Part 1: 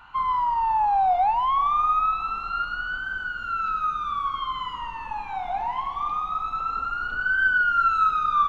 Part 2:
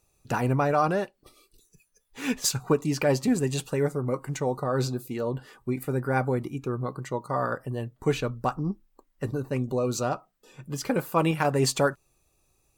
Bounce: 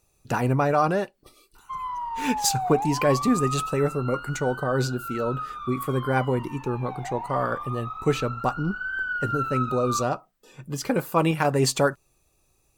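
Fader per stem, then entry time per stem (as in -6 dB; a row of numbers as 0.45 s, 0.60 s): -8.0 dB, +2.0 dB; 1.55 s, 0.00 s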